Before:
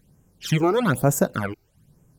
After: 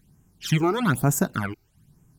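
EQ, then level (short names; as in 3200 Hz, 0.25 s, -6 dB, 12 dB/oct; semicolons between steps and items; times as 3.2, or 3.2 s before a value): bell 530 Hz -12.5 dB 0.48 oct; 0.0 dB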